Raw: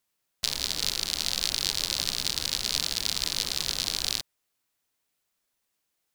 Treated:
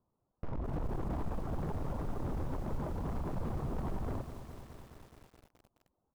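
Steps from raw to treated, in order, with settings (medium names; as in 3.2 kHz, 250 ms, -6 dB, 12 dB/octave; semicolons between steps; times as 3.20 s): 0.73–1.39 s: companding laws mixed up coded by mu; reverb removal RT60 0.73 s; steep low-pass 1.1 kHz 36 dB/octave; bass shelf 260 Hz +11.5 dB; peak limiter -31 dBFS, peak gain reduction 9 dB; gain riding 2 s; hard clipper -40 dBFS, distortion -9 dB; frequency-shifting echo 83 ms, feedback 44%, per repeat -83 Hz, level -17.5 dB; bit-crushed delay 212 ms, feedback 80%, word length 10-bit, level -10.5 dB; trim +7 dB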